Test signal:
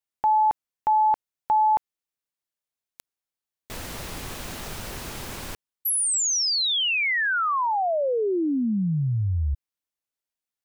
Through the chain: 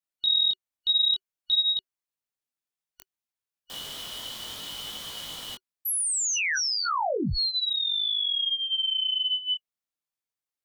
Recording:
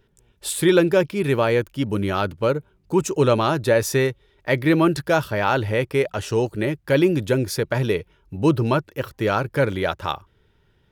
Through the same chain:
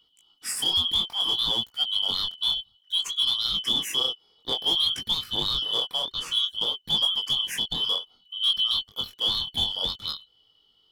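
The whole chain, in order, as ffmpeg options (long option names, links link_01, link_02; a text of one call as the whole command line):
ffmpeg -i in.wav -af "afftfilt=real='real(if(lt(b,272),68*(eq(floor(b/68),0)*1+eq(floor(b/68),1)*3+eq(floor(b/68),2)*0+eq(floor(b/68),3)*2)+mod(b,68),b),0)':imag='imag(if(lt(b,272),68*(eq(floor(b/68),0)*1+eq(floor(b/68),1)*3+eq(floor(b/68),2)*0+eq(floor(b/68),3)*2)+mod(b,68),b),0)':win_size=2048:overlap=0.75,bandreject=frequency=380:width=12,adynamicequalizer=threshold=0.0112:dfrequency=4500:dqfactor=4.5:tfrequency=4500:tqfactor=4.5:attack=5:release=100:ratio=0.417:range=2.5:mode=cutabove:tftype=bell,alimiter=limit=-11.5dB:level=0:latency=1:release=233,asoftclip=type=hard:threshold=-15dB,flanger=delay=18:depth=6.1:speed=0.58" out.wav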